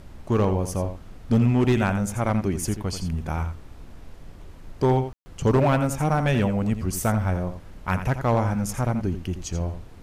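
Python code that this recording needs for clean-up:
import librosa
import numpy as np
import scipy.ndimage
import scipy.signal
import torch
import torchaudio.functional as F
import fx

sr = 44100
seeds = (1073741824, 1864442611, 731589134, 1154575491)

y = fx.fix_declip(x, sr, threshold_db=-13.5)
y = fx.fix_ambience(y, sr, seeds[0], print_start_s=4.1, print_end_s=4.6, start_s=5.13, end_s=5.26)
y = fx.noise_reduce(y, sr, print_start_s=4.14, print_end_s=4.64, reduce_db=26.0)
y = fx.fix_echo_inverse(y, sr, delay_ms=84, level_db=-10.0)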